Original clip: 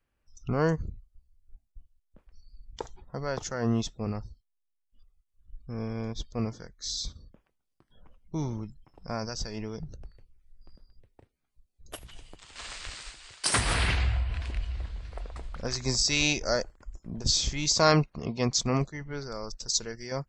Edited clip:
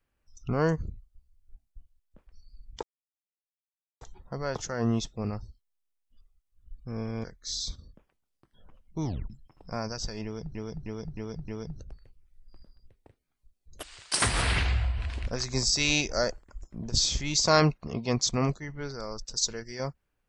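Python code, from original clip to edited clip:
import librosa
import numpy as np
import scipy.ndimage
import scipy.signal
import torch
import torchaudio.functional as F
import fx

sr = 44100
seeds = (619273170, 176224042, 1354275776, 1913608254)

y = fx.edit(x, sr, fx.insert_silence(at_s=2.83, length_s=1.18),
    fx.cut(start_s=6.06, length_s=0.55),
    fx.tape_stop(start_s=8.42, length_s=0.25),
    fx.repeat(start_s=9.61, length_s=0.31, count=5),
    fx.cut(start_s=11.96, length_s=1.19),
    fx.cut(start_s=14.59, length_s=1.0), tone=tone)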